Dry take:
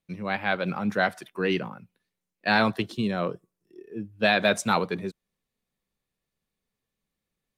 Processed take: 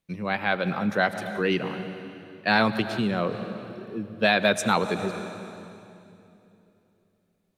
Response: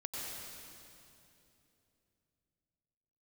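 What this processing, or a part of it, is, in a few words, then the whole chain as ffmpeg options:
ducked reverb: -filter_complex "[0:a]asplit=3[link_01][link_02][link_03];[1:a]atrim=start_sample=2205[link_04];[link_02][link_04]afir=irnorm=-1:irlink=0[link_05];[link_03]apad=whole_len=334124[link_06];[link_05][link_06]sidechaincompress=threshold=-29dB:ratio=8:attack=23:release=162,volume=-6.5dB[link_07];[link_01][link_07]amix=inputs=2:normalize=0"

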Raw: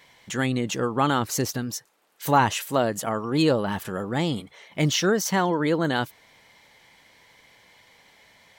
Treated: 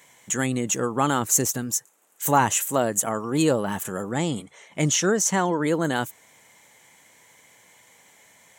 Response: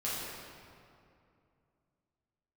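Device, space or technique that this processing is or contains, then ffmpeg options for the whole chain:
budget condenser microphone: -filter_complex "[0:a]highpass=100,highshelf=frequency=5800:width_type=q:width=3:gain=7,asettb=1/sr,asplit=3[link_01][link_02][link_03];[link_01]atrim=end=4.124[link_04];[link_02]atrim=start=4.12:end=5.64,asetpts=PTS-STARTPTS,afade=type=in:duration=0.004:curve=qsin,afade=type=out:start_time=1.516:duration=0.004:curve=qsin,lowpass=8900[link_05];[link_03]atrim=start=5.636[link_06];[link_04][link_05]acrossfade=duration=0.004:curve1=hsin:curve2=qsin[link_07];[link_07][link_06]acrossfade=duration=0.004:curve1=qsin:curve2=hsin"

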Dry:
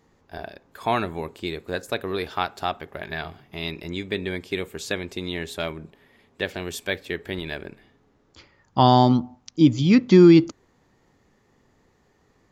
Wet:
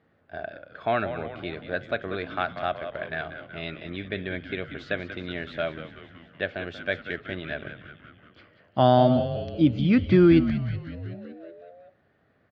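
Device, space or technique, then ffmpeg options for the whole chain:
frequency-shifting delay pedal into a guitar cabinet: -filter_complex "[0:a]asplit=9[link_01][link_02][link_03][link_04][link_05][link_06][link_07][link_08][link_09];[link_02]adelay=187,afreqshift=-110,volume=-10.5dB[link_10];[link_03]adelay=374,afreqshift=-220,volume=-14.5dB[link_11];[link_04]adelay=561,afreqshift=-330,volume=-18.5dB[link_12];[link_05]adelay=748,afreqshift=-440,volume=-22.5dB[link_13];[link_06]adelay=935,afreqshift=-550,volume=-26.6dB[link_14];[link_07]adelay=1122,afreqshift=-660,volume=-30.6dB[link_15];[link_08]adelay=1309,afreqshift=-770,volume=-34.6dB[link_16];[link_09]adelay=1496,afreqshift=-880,volume=-38.6dB[link_17];[link_01][link_10][link_11][link_12][link_13][link_14][link_15][link_16][link_17]amix=inputs=9:normalize=0,highpass=89,equalizer=frequency=100:width_type=q:width=4:gain=5,equalizer=frequency=400:width_type=q:width=4:gain=-3,equalizer=frequency=630:width_type=q:width=4:gain=9,equalizer=frequency=940:width_type=q:width=4:gain=-9,equalizer=frequency=1500:width_type=q:width=4:gain=8,lowpass=frequency=3500:width=0.5412,lowpass=frequency=3500:width=1.3066,volume=-4dB"

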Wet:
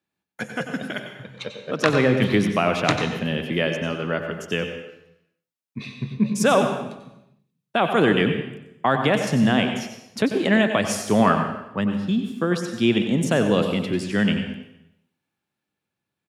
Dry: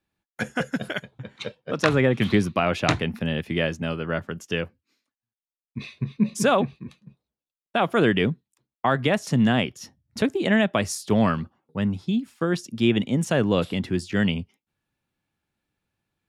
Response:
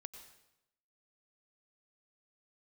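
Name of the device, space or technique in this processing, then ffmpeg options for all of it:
far laptop microphone: -filter_complex "[0:a]asettb=1/sr,asplit=3[link_01][link_02][link_03];[link_01]atrim=end=11.144[link_04];[link_02]atrim=start=11.14:end=11.81,asetpts=PTS-STARTPTS,afade=type=in:duration=0.004:curve=qsin,afade=type=out:start_time=0.666:duration=0.004:curve=qsin,equalizer=frequency=1100:width_type=o:width=1.7:gain=5.5[link_05];[link_03]atrim=start=11.806[link_06];[link_04][link_05]acrossfade=duration=0.004:curve1=hsin:curve2=qsin[link_07];[link_07][link_06]acrossfade=duration=0.004:curve1=qsin:curve2=hsin[link_08];[1:a]atrim=start_sample=2205[link_09];[link_08][link_09]afir=irnorm=-1:irlink=0,highpass=130,dynaudnorm=framelen=120:gausssize=21:maxgain=3.5dB,asplit=2[link_10][link_11];[link_11]adelay=93.29,volume=-11dB,highshelf=frequency=4000:gain=-2.1[link_12];[link_10][link_12]amix=inputs=2:normalize=0,volume=4dB"

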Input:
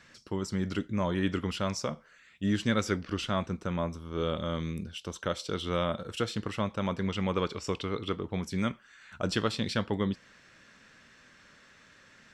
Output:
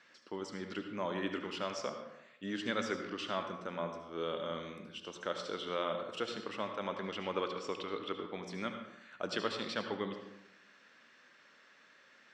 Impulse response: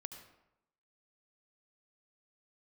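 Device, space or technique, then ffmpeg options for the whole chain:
supermarket ceiling speaker: -filter_complex "[0:a]highpass=320,lowpass=5300[link_01];[1:a]atrim=start_sample=2205[link_02];[link_01][link_02]afir=irnorm=-1:irlink=0"

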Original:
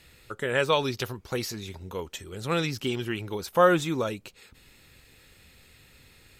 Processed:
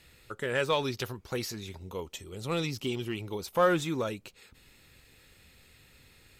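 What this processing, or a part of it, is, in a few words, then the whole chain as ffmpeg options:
parallel distortion: -filter_complex "[0:a]asplit=2[link_01][link_02];[link_02]asoftclip=type=hard:threshold=-24dB,volume=-7.5dB[link_03];[link_01][link_03]amix=inputs=2:normalize=0,asettb=1/sr,asplit=3[link_04][link_05][link_06];[link_04]atrim=end=1.784[link_07];[link_05]atrim=start=1.78:end=3.56,asetpts=PTS-STARTPTS,afade=type=in:duration=0.004:curve=qsin,afade=type=out:start_time=1.776:duration=0.004:curve=qsin,equalizer=frequency=1600:width_type=o:width=0.42:gain=-9[link_08];[link_06]atrim=start=3.556[link_09];[link_07][link_08]acrossfade=duration=0.004:curve1=hsin:curve2=qsin[link_10];[link_10][link_09]acrossfade=duration=0.004:curve1=qsin:curve2=hsin,volume=-6dB"

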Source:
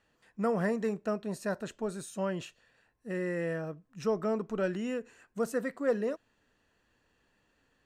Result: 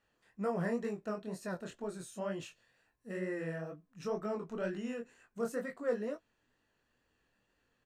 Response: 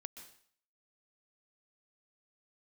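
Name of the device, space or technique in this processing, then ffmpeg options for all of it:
double-tracked vocal: -filter_complex "[0:a]asettb=1/sr,asplit=3[link_01][link_02][link_03];[link_01]atrim=end=2.314[link_04];[link_02]atrim=start=2.31:end=3.17,asetpts=PTS-STARTPTS,afade=type=in:duration=0.004:curve=qsin,afade=type=out:start_time=0.856:duration=0.004:curve=qsin,highshelf=frequency=4700:gain=4.5[link_05];[link_03]atrim=start=3.166[link_06];[link_04][link_05]acrossfade=duration=0.004:curve1=hsin:curve2=qsin[link_07];[link_07][link_06]acrossfade=duration=0.004:curve1=qsin:curve2=hsin,asplit=2[link_08][link_09];[link_09]adelay=17,volume=-12dB[link_10];[link_08][link_10]amix=inputs=2:normalize=0,flanger=delay=19.5:depth=6.4:speed=2.1,volume=-2.5dB"

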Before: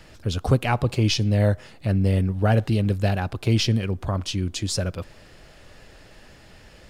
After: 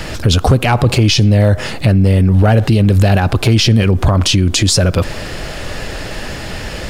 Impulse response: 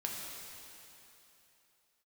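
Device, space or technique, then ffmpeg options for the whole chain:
loud club master: -af "acompressor=threshold=-24dB:ratio=2,asoftclip=type=hard:threshold=-16.5dB,alimiter=level_in=26.5dB:limit=-1dB:release=50:level=0:latency=1,volume=-2.5dB"

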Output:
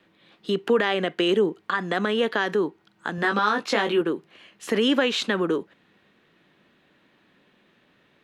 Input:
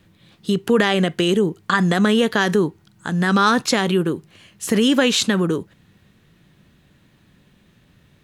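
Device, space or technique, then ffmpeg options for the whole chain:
DJ mixer with the lows and highs turned down: -filter_complex "[0:a]acrossover=split=250 4000:gain=0.0794 1 0.178[link_01][link_02][link_03];[link_01][link_02][link_03]amix=inputs=3:normalize=0,alimiter=limit=-11.5dB:level=0:latency=1:release=496,asettb=1/sr,asplit=3[link_04][link_05][link_06];[link_04]atrim=end=3.164[link_07];[link_05]atrim=start=3.16:end=4.01,asetpts=PTS-STARTPTS,afade=type=in:duration=0.004:curve=qsin,afade=type=out:start_time=0.846:duration=0.004:curve=qsin,asplit=2[link_08][link_09];[link_09]adelay=19,volume=-4dB[link_10];[link_08][link_10]amix=inputs=2:normalize=0,atrim=end_sample=37485[link_11];[link_06]atrim=start=4.006[link_12];[link_07][link_11]acrossfade=duration=0.004:curve1=hsin:curve2=qsin[link_13];[link_13][link_12]acrossfade=duration=0.004:curve1=qsin:curve2=hsin"

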